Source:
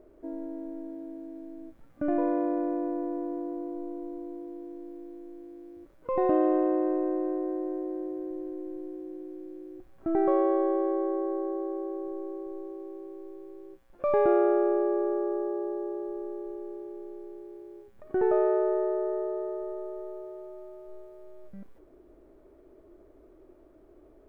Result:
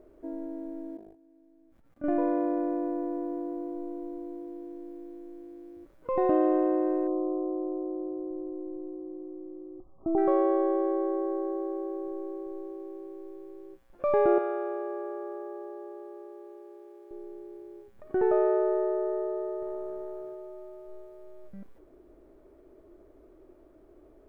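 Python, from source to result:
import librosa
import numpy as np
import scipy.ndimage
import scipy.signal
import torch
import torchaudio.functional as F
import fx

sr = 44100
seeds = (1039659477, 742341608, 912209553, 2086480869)

y = fx.level_steps(x, sr, step_db=20, at=(0.97, 2.04))
y = fx.brickwall_lowpass(y, sr, high_hz=1300.0, at=(7.07, 10.18))
y = fx.highpass(y, sr, hz=1000.0, slope=6, at=(14.38, 17.11))
y = fx.transient(y, sr, attack_db=-2, sustain_db=8, at=(19.62, 20.35))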